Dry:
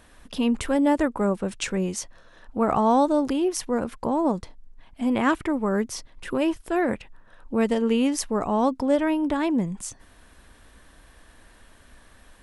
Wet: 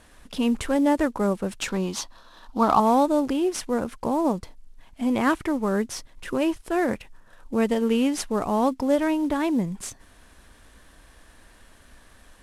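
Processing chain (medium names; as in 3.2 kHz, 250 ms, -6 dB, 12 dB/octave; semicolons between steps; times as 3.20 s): CVSD coder 64 kbps; 1.68–2.80 s: ten-band graphic EQ 125 Hz -7 dB, 250 Hz +4 dB, 500 Hz -5 dB, 1 kHz +10 dB, 2 kHz -6 dB, 4 kHz +10 dB, 8 kHz -4 dB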